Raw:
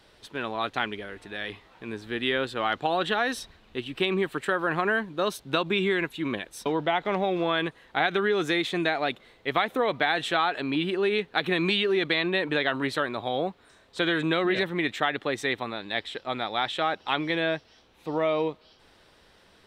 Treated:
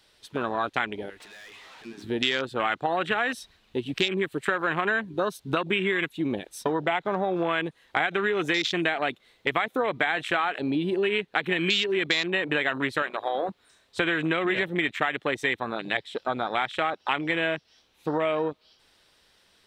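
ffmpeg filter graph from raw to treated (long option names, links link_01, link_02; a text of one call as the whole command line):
ffmpeg -i in.wav -filter_complex "[0:a]asettb=1/sr,asplit=3[link_01][link_02][link_03];[link_01]atrim=end=1.204[link_04];[link_02]atrim=start=1.2:end=2.03,asetpts=PTS-STARTPTS,afade=type=in:duration=0.004:curve=qsin,afade=type=out:start_time=0.826:duration=0.004:curve=qsin,acompressor=threshold=-52dB:ratio=2.5:attack=3.2:release=140:knee=1:detection=peak,asplit=2[link_05][link_06];[link_06]highpass=frequency=720:poles=1,volume=28dB,asoftclip=type=tanh:threshold=-34dB[link_07];[link_05][link_07]amix=inputs=2:normalize=0,lowpass=frequency=3200:poles=1,volume=-6dB[link_08];[link_03]atrim=start=2.026[link_09];[link_04][link_08]acrossfade=duration=0.004:curve1=hsin:curve2=qsin[link_10];[link_10][link_09]acrossfade=duration=0.004:curve1=qsin:curve2=hsin,asettb=1/sr,asplit=3[link_11][link_12][link_13];[link_11]atrim=end=13.024[link_14];[link_12]atrim=start=13.02:end=13.49,asetpts=PTS-STARTPTS,afade=type=in:duration=0.004:curve=qsin,afade=type=out:start_time=0.466:duration=0.004:curve=qsin,equalizer=frequency=170:width=0.91:gain=-14,bandreject=frequency=60:width_type=h:width=6,bandreject=frequency=120:width_type=h:width=6,bandreject=frequency=180:width_type=h:width=6,bandreject=frequency=240:width_type=h:width=6,bandreject=frequency=300:width_type=h:width=6,bandreject=frequency=360:width_type=h:width=6,bandreject=frequency=420:width_type=h:width=6,bandreject=frequency=480:width_type=h:width=6,bandreject=frequency=540:width_type=h:width=6[link_15];[link_13]atrim=start=13.486[link_16];[link_14][link_15]acrossfade=duration=0.004:curve1=hsin:curve2=qsin[link_17];[link_17][link_16]acrossfade=duration=0.004:curve1=qsin:curve2=hsin,afwtdn=0.0282,highshelf=frequency=2100:gain=11.5,acompressor=threshold=-32dB:ratio=3,volume=7dB" out.wav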